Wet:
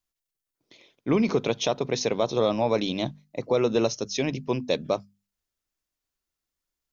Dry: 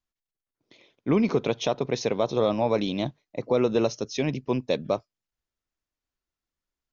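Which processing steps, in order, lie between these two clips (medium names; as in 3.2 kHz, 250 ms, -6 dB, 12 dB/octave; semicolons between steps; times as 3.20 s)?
treble shelf 4.6 kHz +8 dB; hum notches 50/100/150/200/250 Hz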